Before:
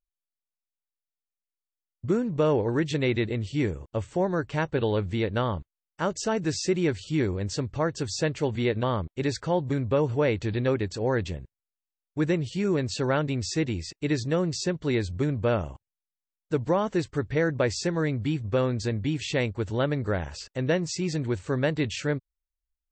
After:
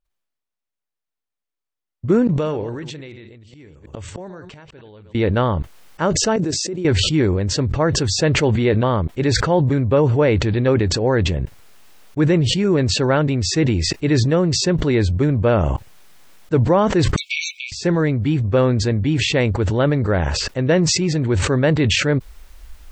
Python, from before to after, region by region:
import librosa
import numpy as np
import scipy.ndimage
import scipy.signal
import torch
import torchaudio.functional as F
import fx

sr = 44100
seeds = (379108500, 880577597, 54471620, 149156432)

y = fx.chain(x, sr, fx.reverse_delay(ms=106, wet_db=-11.5),
    fx.gate_flip(shuts_db=-26.0, range_db=-27),
    fx.high_shelf(hz=2500.0, db=9.5), at=(2.27, 5.15))
y = fx.chain(y, sr, fx.highpass(hz=250.0, slope=12),
    fx.peak_eq(hz=2000.0, db=-12.0, octaves=2.8),
    fx.level_steps(step_db=11), at=(6.36, 6.85))
y = fx.chain(y, sr, fx.brickwall_highpass(low_hz=2200.0),
    fx.tilt_eq(slope=-3.0), at=(17.16, 17.72))
y = fx.high_shelf(y, sr, hz=4100.0, db=-10.0)
y = fx.sustainer(y, sr, db_per_s=25.0)
y = y * librosa.db_to_amplitude(8.0)